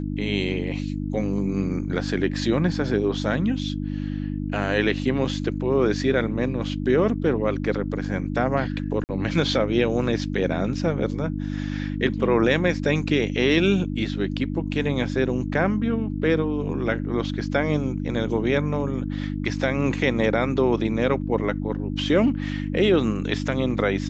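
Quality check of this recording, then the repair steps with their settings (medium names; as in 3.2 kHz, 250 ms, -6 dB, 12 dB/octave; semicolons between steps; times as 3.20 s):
hum 50 Hz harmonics 6 -28 dBFS
9.04–9.09 s: dropout 49 ms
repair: de-hum 50 Hz, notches 6; interpolate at 9.04 s, 49 ms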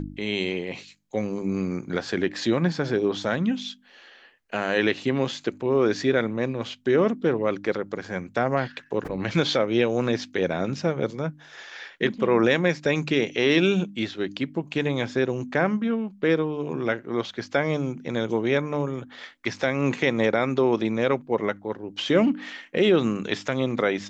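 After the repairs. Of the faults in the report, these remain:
nothing left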